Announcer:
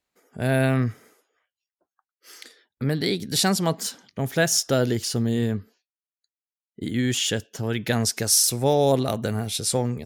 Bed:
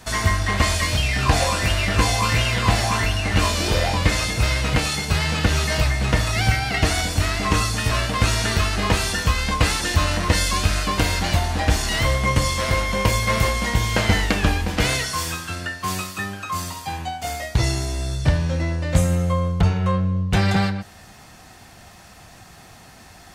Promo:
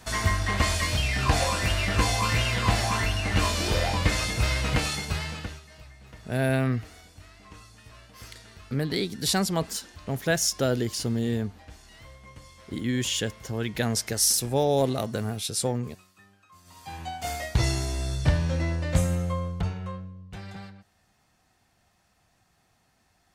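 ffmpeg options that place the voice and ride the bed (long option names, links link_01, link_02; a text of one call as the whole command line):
ffmpeg -i stem1.wav -i stem2.wav -filter_complex "[0:a]adelay=5900,volume=-3.5dB[link_01];[1:a]volume=19.5dB,afade=type=out:start_time=4.84:duration=0.77:silence=0.0668344,afade=type=in:start_time=16.64:duration=0.63:silence=0.0595662,afade=type=out:start_time=18.74:duration=1.41:silence=0.125893[link_02];[link_01][link_02]amix=inputs=2:normalize=0" out.wav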